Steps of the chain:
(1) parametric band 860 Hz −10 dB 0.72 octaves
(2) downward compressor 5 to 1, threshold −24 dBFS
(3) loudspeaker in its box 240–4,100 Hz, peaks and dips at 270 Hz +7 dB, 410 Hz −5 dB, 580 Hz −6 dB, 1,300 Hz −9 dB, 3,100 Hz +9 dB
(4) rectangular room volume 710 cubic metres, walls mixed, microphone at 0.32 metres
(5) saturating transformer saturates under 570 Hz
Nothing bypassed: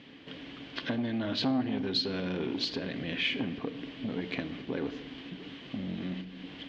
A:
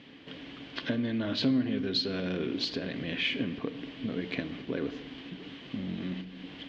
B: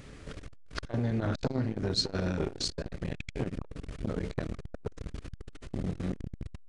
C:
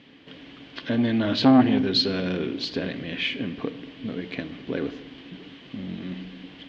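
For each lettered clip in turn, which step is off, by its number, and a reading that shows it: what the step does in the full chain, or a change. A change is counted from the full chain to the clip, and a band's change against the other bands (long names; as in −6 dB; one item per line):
5, 1 kHz band −5.0 dB
3, change in momentary loudness spread +2 LU
2, average gain reduction 3.0 dB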